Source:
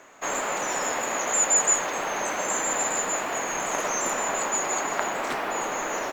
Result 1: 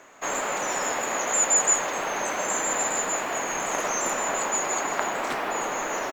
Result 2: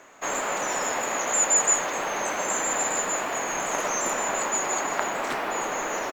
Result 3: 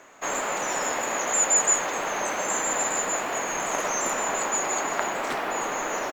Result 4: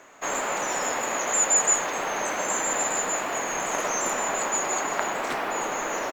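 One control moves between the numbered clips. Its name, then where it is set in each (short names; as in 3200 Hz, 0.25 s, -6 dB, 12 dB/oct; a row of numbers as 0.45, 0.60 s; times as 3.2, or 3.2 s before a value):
speakerphone echo, time: 0.16, 0.23, 0.38, 0.1 s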